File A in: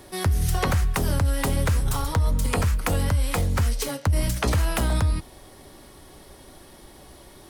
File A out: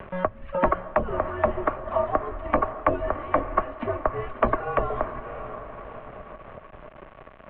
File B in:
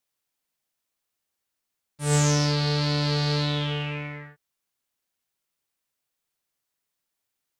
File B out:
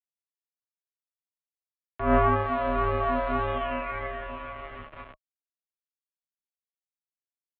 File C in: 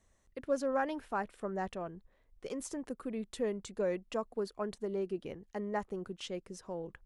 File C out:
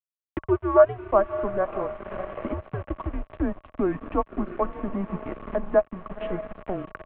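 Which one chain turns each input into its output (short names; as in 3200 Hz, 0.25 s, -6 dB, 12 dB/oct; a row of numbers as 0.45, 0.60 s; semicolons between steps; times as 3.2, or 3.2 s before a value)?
reverb removal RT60 1.3 s; gate with hold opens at -54 dBFS; three-band isolator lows -13 dB, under 480 Hz, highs -14 dB, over 2200 Hz; diffused feedback echo 0.598 s, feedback 45%, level -10 dB; crossover distortion -52.5 dBFS; bit-crush 10-bit; air absorption 410 m; small resonant body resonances 210/810/1300 Hz, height 12 dB, ringing for 45 ms; upward compressor, threshold -36 dBFS; mistuned SSB -190 Hz 160–3300 Hz; match loudness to -27 LUFS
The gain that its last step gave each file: +7.0, +11.0, +13.5 dB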